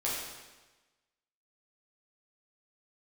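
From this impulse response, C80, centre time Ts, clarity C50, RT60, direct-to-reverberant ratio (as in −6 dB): 2.5 dB, 78 ms, 0.0 dB, 1.2 s, −7.0 dB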